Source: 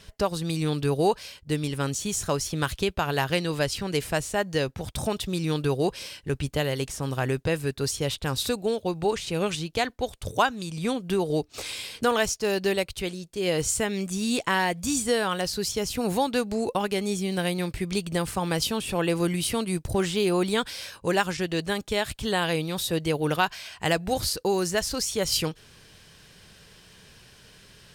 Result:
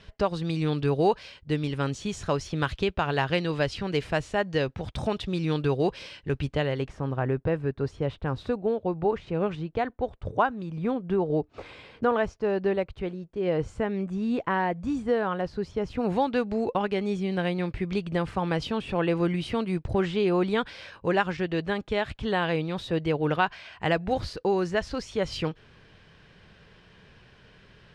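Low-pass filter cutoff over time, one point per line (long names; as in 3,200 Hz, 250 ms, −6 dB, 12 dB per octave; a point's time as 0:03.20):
0:06.44 3,400 Hz
0:07.15 1,400 Hz
0:15.76 1,400 Hz
0:16.16 2,500 Hz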